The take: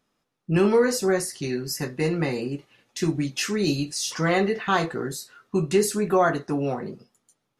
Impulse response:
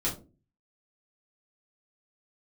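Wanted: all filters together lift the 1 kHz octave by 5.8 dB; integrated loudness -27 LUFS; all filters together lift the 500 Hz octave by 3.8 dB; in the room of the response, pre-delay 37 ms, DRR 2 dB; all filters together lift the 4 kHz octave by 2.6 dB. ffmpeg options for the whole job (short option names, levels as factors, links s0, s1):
-filter_complex "[0:a]equalizer=f=500:t=o:g=3.5,equalizer=f=1000:t=o:g=6.5,equalizer=f=4000:t=o:g=3,asplit=2[s0][s1];[1:a]atrim=start_sample=2205,adelay=37[s2];[s1][s2]afir=irnorm=-1:irlink=0,volume=0.376[s3];[s0][s3]amix=inputs=2:normalize=0,volume=0.355"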